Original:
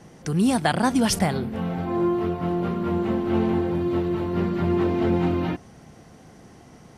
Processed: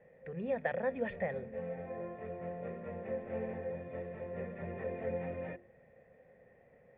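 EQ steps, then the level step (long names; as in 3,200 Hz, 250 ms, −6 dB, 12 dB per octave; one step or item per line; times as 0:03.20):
formant resonators in series e
parametric band 310 Hz −12.5 dB 0.42 octaves
mains-hum notches 50/100/150/200/250/300/350 Hz
+1.0 dB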